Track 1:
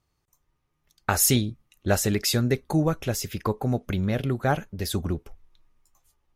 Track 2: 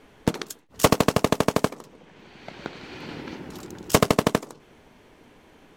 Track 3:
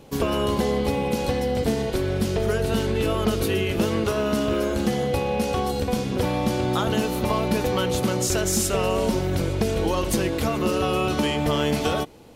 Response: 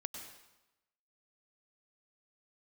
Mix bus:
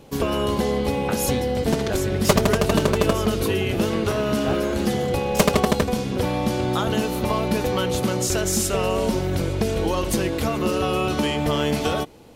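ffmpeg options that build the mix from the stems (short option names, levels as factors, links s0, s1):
-filter_complex "[0:a]volume=0.447[s0];[1:a]aecho=1:1:5.1:0.97,adelay=1450,volume=0.708[s1];[2:a]volume=1.06[s2];[s0][s1][s2]amix=inputs=3:normalize=0"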